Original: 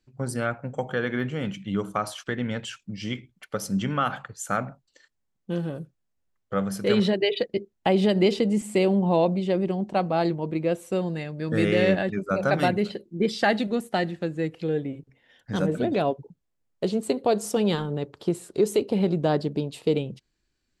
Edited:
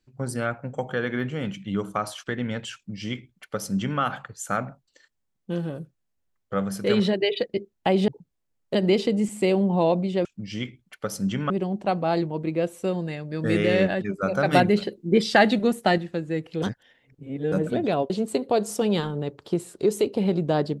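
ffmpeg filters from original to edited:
-filter_complex "[0:a]asplit=10[s0][s1][s2][s3][s4][s5][s6][s7][s8][s9];[s0]atrim=end=8.082[s10];[s1]atrim=start=16.178:end=16.852[s11];[s2]atrim=start=8.078:end=9.582[s12];[s3]atrim=start=2.748:end=4.002[s13];[s4]atrim=start=9.578:end=12.612[s14];[s5]atrim=start=12.608:end=14.062,asetpts=PTS-STARTPTS,volume=1.68[s15];[s6]atrim=start=14.058:end=14.702[s16];[s7]atrim=start=14.698:end=15.602,asetpts=PTS-STARTPTS,areverse[s17];[s8]atrim=start=15.598:end=16.182[s18];[s9]atrim=start=16.848[s19];[s10][s11]acrossfade=d=0.004:c1=hsin:c2=hsin[s20];[s20][s12]acrossfade=d=0.004:c1=hsin:c2=hsin[s21];[s21][s13]acrossfade=d=0.004:c1=hsin:c2=hsin[s22];[s22][s14]acrossfade=d=0.004:c1=hsin:c2=hsin[s23];[s23][s15]acrossfade=d=0.004:c1=hsin:c2=hsin[s24];[s24][s16]acrossfade=d=0.004:c1=hsin:c2=hsin[s25];[s25][s17]acrossfade=d=0.004:c1=hsin:c2=hsin[s26];[s26][s18]acrossfade=d=0.004:c1=hsin:c2=hsin[s27];[s27][s19]acrossfade=d=0.004:c1=hsin:c2=hsin"

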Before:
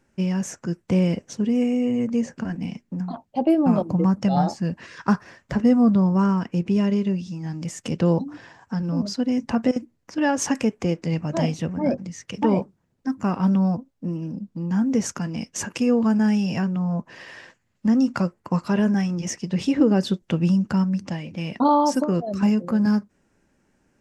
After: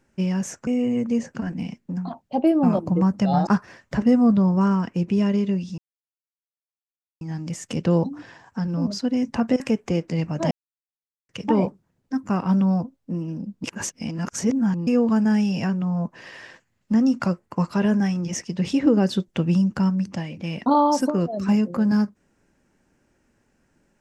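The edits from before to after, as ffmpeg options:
-filter_complex "[0:a]asplit=9[s0][s1][s2][s3][s4][s5][s6][s7][s8];[s0]atrim=end=0.672[s9];[s1]atrim=start=1.698:end=4.502[s10];[s2]atrim=start=5.048:end=7.36,asetpts=PTS-STARTPTS,afade=t=out:st=2.308:d=0.004:c=hsin,apad=pad_dur=1.43[s11];[s3]atrim=start=7.36:end=9.752,asetpts=PTS-STARTPTS,afade=t=in:d=0.004:c=hsin[s12];[s4]atrim=start=10.538:end=11.45,asetpts=PTS-STARTPTS,afade=t=out:st=0.908:d=0.004:c=hsin[s13];[s5]atrim=start=11.45:end=12.23,asetpts=PTS-STARTPTS,volume=0[s14];[s6]atrim=start=12.23:end=14.582,asetpts=PTS-STARTPTS,afade=t=in:d=0.004:c=hsin[s15];[s7]atrim=start=14.578:end=15.812,asetpts=PTS-STARTPTS,areverse[s16];[s8]atrim=start=15.808[s17];[s9][s10]acrossfade=d=0.004:c1=hsin:c2=hsin[s18];[s11][s12]concat=n=2:v=0:a=1[s19];[s18][s19]acrossfade=d=0.004:c1=hsin:c2=hsin[s20];[s13][s14][s15]concat=n=3:v=0:a=1[s21];[s20][s21]acrossfade=d=0.004:c1=hsin:c2=hsin[s22];[s22][s16]acrossfade=d=0.004:c1=hsin:c2=hsin[s23];[s23][s17]acrossfade=d=0.004:c1=hsin:c2=hsin"

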